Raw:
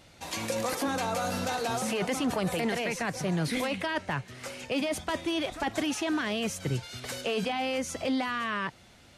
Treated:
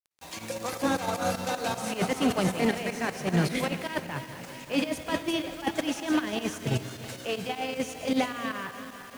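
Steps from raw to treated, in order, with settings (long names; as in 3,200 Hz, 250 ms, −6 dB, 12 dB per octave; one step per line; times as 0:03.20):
feedback delay that plays each chunk backwards 177 ms, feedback 79%, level −9.5 dB
fake sidechain pumping 155 BPM, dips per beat 2, −13 dB, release 60 ms
noise gate −28 dBFS, range −9 dB
bit reduction 9 bits
on a send: convolution reverb RT60 1.6 s, pre-delay 48 ms, DRR 13 dB
on the sum: level +4 dB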